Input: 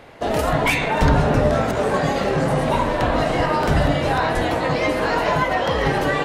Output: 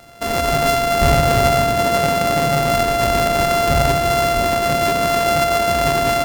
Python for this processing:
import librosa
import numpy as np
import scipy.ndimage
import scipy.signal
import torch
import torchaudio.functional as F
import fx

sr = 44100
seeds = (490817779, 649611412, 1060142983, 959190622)

y = np.r_[np.sort(x[:len(x) // 64 * 64].reshape(-1, 64), axis=1).ravel(), x[len(x) // 64 * 64:]]
y = fx.echo_filtered(y, sr, ms=87, feedback_pct=82, hz=1400.0, wet_db=-10.5)